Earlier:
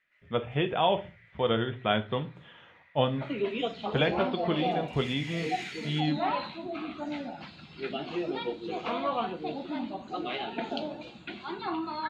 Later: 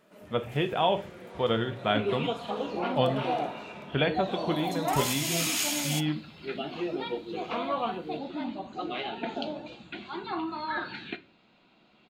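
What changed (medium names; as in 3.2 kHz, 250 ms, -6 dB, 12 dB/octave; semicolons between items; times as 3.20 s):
first sound: remove ladder band-pass 2.1 kHz, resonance 75%; second sound: entry -1.35 s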